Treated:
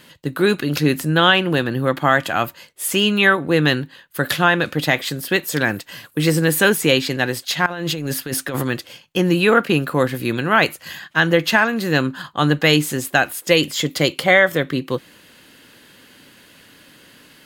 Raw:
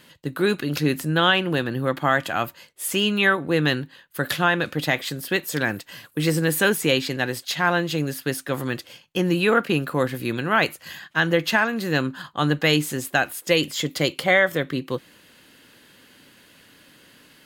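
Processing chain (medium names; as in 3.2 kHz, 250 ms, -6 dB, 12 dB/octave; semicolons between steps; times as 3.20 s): 7.66–8.63 s: compressor with a negative ratio -29 dBFS, ratio -1; trim +4.5 dB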